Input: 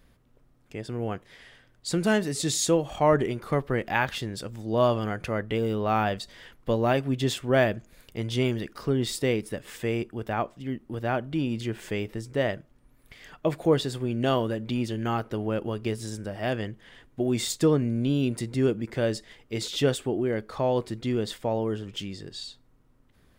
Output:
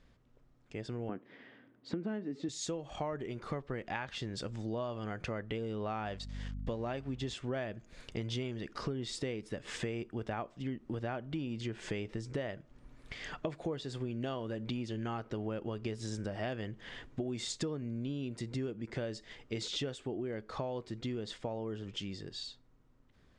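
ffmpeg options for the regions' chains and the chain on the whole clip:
ffmpeg -i in.wav -filter_complex "[0:a]asettb=1/sr,asplit=3[link_01][link_02][link_03];[link_01]atrim=end=1.094[link_04];[link_02]atrim=start=1.09:end=2.49,asetpts=PTS-STARTPTS,afade=type=in:duration=0.004:curve=qsin,afade=type=out:start_time=1.396:duration=0.004:curve=qsin,highpass=150,lowpass=2300,equalizer=frequency=270:width_type=o:width=1:gain=13[link_05];[link_03]atrim=start=2.486[link_06];[link_04][link_05]acrossfade=duration=0.004:curve1=hsin:curve2=qsin[link_07];[link_07][link_06]acrossfade=duration=0.004:curve1=qsin:curve2=hsin,asettb=1/sr,asplit=3[link_08][link_09][link_10];[link_08]atrim=end=6.054[link_11];[link_09]atrim=start=6.05:end=7.34,asetpts=PTS-STARTPTS,afade=type=in:duration=0.004:curve=qsin,afade=type=out:start_time=1.286:duration=0.004:curve=qsin,aeval=exprs='sgn(val(0))*max(abs(val(0))-0.00299,0)':channel_layout=same,aeval=exprs='val(0)+0.01*(sin(2*PI*50*n/s)+sin(2*PI*2*50*n/s)/2+sin(2*PI*3*50*n/s)/3+sin(2*PI*4*50*n/s)/4+sin(2*PI*5*50*n/s)/5)':channel_layout=same[link_12];[link_10]atrim=start=7.336[link_13];[link_11][link_12]acrossfade=duration=0.004:curve1=hsin:curve2=qsin[link_14];[link_14][link_13]acrossfade=duration=0.004:curve1=qsin:curve2=hsin,dynaudnorm=framelen=310:gausssize=31:maxgain=11.5dB,lowpass=frequency=7400:width=0.5412,lowpass=frequency=7400:width=1.3066,acompressor=threshold=-30dB:ratio=10,volume=-4.5dB" out.wav

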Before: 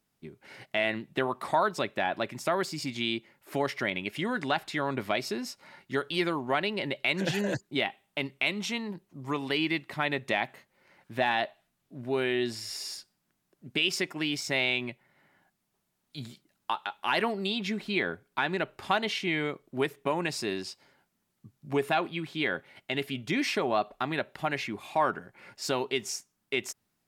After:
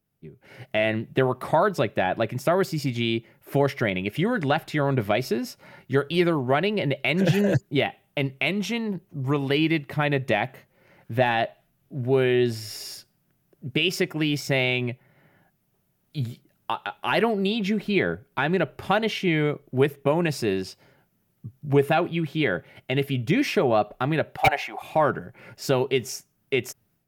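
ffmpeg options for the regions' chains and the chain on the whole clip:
ffmpeg -i in.wav -filter_complex "[0:a]asettb=1/sr,asplit=3[link_01][link_02][link_03];[link_01]atrim=end=24.374[link_04];[link_02]atrim=start=24.37:end=24.82,asetpts=PTS-STARTPTS,afade=type=in:duration=0.004:curve=qsin,afade=type=out:start_time=0.446:duration=0.004:curve=qsin,highpass=frequency=770:width_type=q:width=8.5,aeval=exprs='0.188*(abs(mod(val(0)/0.188+3,4)-2)-1)':channel_layout=same[link_05];[link_03]atrim=start=24.816[link_06];[link_04][link_05]acrossfade=duration=0.004:curve1=hsin:curve2=qsin[link_07];[link_07][link_06]acrossfade=duration=0.004:curve1=qsin:curve2=hsin,equalizer=frequency=125:width_type=o:width=1:gain=5,equalizer=frequency=250:width_type=o:width=1:gain=-5,equalizer=frequency=1000:width_type=o:width=1:gain=-8,equalizer=frequency=2000:width_type=o:width=1:gain=-5,equalizer=frequency=4000:width_type=o:width=1:gain=-6,equalizer=frequency=8000:width_type=o:width=1:gain=-10,dynaudnorm=framelen=350:gausssize=3:maxgain=9dB,equalizer=frequency=4300:width_type=o:width=0.77:gain=-2.5,volume=2dB" out.wav

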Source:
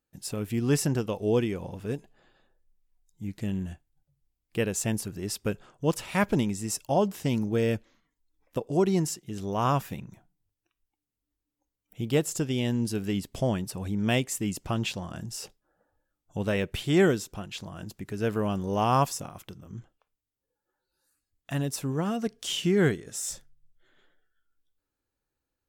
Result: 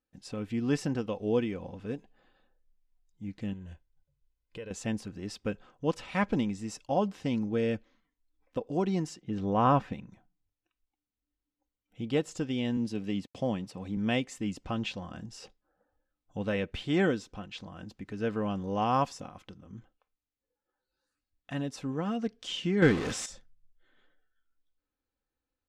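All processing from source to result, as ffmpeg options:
ffmpeg -i in.wav -filter_complex "[0:a]asettb=1/sr,asplit=3[link_01][link_02][link_03];[link_01]atrim=end=3.534[link_04];[link_02]atrim=start=3.53:end=4.71,asetpts=PTS-STARTPTS,afade=type=in:duration=0.004:curve=qsin,afade=type=out:start_time=1.176:duration=0.004:curve=qsin,aecho=1:1:2:0.54,atrim=end_sample=52038,acompressor=threshold=-36dB:ratio=4:attack=3.2:release=140:knee=1:detection=peak[link_05];[link_03]atrim=start=4.706[link_06];[link_04][link_05]acrossfade=duration=0.004:curve1=hsin:curve2=qsin[link_07];[link_07][link_06]acrossfade=duration=0.004:curve1=qsin:curve2=hsin,asettb=1/sr,asplit=3[link_08][link_09][link_10];[link_08]atrim=end=9.214[link_11];[link_09]atrim=start=9.21:end=9.93,asetpts=PTS-STARTPTS,afade=type=in:duration=0.004:curve=qsin,afade=type=out:start_time=0.716:duration=0.004:curve=qsin,lowpass=frequency=1700:poles=1,acontrast=62[link_12];[link_10]atrim=start=9.926[link_13];[link_11][link_12]acrossfade=duration=0.004:curve1=hsin:curve2=qsin[link_14];[link_14][link_13]acrossfade=duration=0.004:curve1=qsin:curve2=hsin,asettb=1/sr,asplit=3[link_15][link_16][link_17];[link_15]atrim=end=12.774[link_18];[link_16]atrim=start=12.77:end=13.97,asetpts=PTS-STARTPTS,afade=type=in:duration=0.004:curve=qsin,afade=type=out:start_time=1.196:duration=0.004:curve=qsin,highpass=frequency=98:width=0.5412,highpass=frequency=98:width=1.3066,equalizer=frequency=1500:width_type=o:width=0.28:gain=-8,aeval=exprs='sgn(val(0))*max(abs(val(0))-0.00112,0)':channel_layout=same[link_19];[link_17]atrim=start=13.966[link_20];[link_18][link_19]acrossfade=duration=0.004:curve1=hsin:curve2=qsin[link_21];[link_21][link_20]acrossfade=duration=0.004:curve1=qsin:curve2=hsin,asettb=1/sr,asplit=3[link_22][link_23][link_24];[link_22]atrim=end=22.824[link_25];[link_23]atrim=start=22.82:end=23.26,asetpts=PTS-STARTPTS,afade=type=in:duration=0.004:curve=qsin,afade=type=out:start_time=0.436:duration=0.004:curve=qsin,aeval=exprs='val(0)+0.5*0.0355*sgn(val(0))':channel_layout=same,acontrast=31[link_26];[link_24]atrim=start=23.256[link_27];[link_25][link_26]acrossfade=duration=0.004:curve1=hsin:curve2=qsin[link_28];[link_28][link_27]acrossfade=duration=0.004:curve1=qsin:curve2=hsin,lowpass=4500,aecho=1:1:3.9:0.37,volume=-4dB" out.wav

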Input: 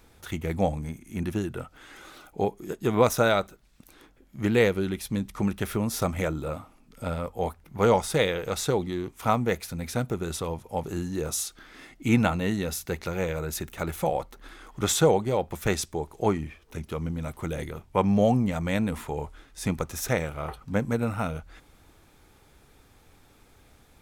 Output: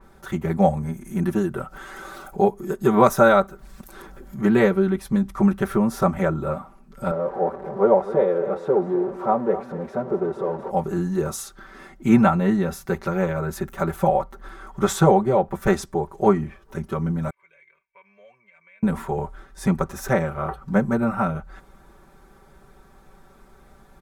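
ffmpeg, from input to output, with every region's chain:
ffmpeg -i in.wav -filter_complex "[0:a]asettb=1/sr,asplit=3[link_01][link_02][link_03];[link_01]atrim=end=0.624[link_04];[link_02]atrim=start=0.62:end=4.41,asetpts=PTS-STARTPTS,afade=type=in:duration=0.004:curve=qsin,afade=type=out:start_time=3.786:duration=0.004:curve=qsin,highshelf=frequency=5000:gain=6.5,acompressor=mode=upward:threshold=-36dB:ratio=2.5:attack=3.2:release=140:knee=2.83:detection=peak[link_05];[link_03]atrim=start=4.406[link_06];[link_04][link_05]acrossfade=duration=0.004:curve1=hsin:curve2=qsin[link_07];[link_07][link_06]acrossfade=duration=0.004:curve1=qsin:curve2=hsin,asettb=1/sr,asplit=3[link_08][link_09][link_10];[link_08]atrim=end=7.114[link_11];[link_09]atrim=start=7.11:end=10.71,asetpts=PTS-STARTPTS,afade=type=in:duration=0.004:curve=qsin,afade=type=out:start_time=3.596:duration=0.004:curve=qsin,aeval=exprs='val(0)+0.5*0.0473*sgn(val(0))':channel_layout=same,bandpass=frequency=490:width_type=q:width=1.6,aecho=1:1:253:0.211,atrim=end_sample=158760[link_12];[link_10]atrim=start=10.706[link_13];[link_11][link_12]acrossfade=duration=0.004:curve1=hsin:curve2=qsin[link_14];[link_14][link_13]acrossfade=duration=0.004:curve1=qsin:curve2=hsin,asettb=1/sr,asplit=3[link_15][link_16][link_17];[link_15]atrim=end=17.304[link_18];[link_16]atrim=start=17.3:end=18.83,asetpts=PTS-STARTPTS,afade=type=in:duration=0.004:curve=qsin,afade=type=out:start_time=1.526:duration=0.004:curve=qsin,bandpass=frequency=2300:width_type=q:width=20,aecho=1:1:1.9:0.81,atrim=end_sample=67473,acompressor=threshold=-51dB:ratio=2.5:attack=3.2:release=140:knee=1:detection=peak[link_19];[link_17]atrim=start=18.826[link_20];[link_18][link_19]acrossfade=duration=0.004:curve1=hsin:curve2=qsin[link_21];[link_21][link_20]acrossfade=duration=0.004:curve1=qsin:curve2=hsin,highshelf=frequency=1900:width_type=q:width=1.5:gain=-8,aecho=1:1:5.2:0.98,adynamicequalizer=threshold=0.00631:dfrequency=3400:dqfactor=0.7:tfrequency=3400:tqfactor=0.7:attack=5:release=100:ratio=0.375:range=4:mode=cutabove:tftype=highshelf,volume=3.5dB" out.wav

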